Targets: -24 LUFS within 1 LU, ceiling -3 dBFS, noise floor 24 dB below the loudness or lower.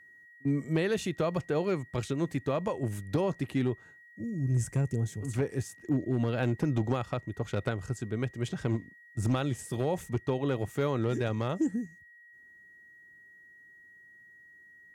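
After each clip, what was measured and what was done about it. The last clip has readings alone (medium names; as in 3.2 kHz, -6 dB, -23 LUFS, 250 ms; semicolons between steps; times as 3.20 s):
clipped samples 0.4%; clipping level -20.5 dBFS; steady tone 1.9 kHz; tone level -53 dBFS; loudness -32.0 LUFS; peak level -20.5 dBFS; loudness target -24.0 LUFS
-> clip repair -20.5 dBFS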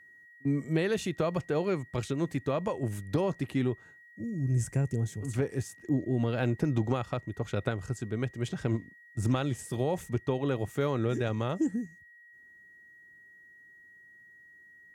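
clipped samples 0.0%; steady tone 1.9 kHz; tone level -53 dBFS
-> band-stop 1.9 kHz, Q 30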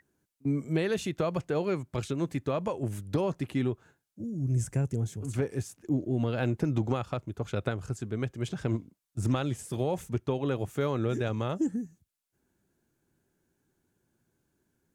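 steady tone not found; loudness -31.5 LUFS; peak level -16.0 dBFS; loudness target -24.0 LUFS
-> trim +7.5 dB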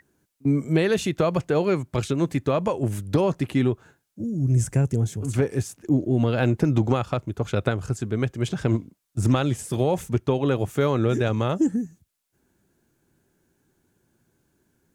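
loudness -24.0 LUFS; peak level -8.5 dBFS; noise floor -75 dBFS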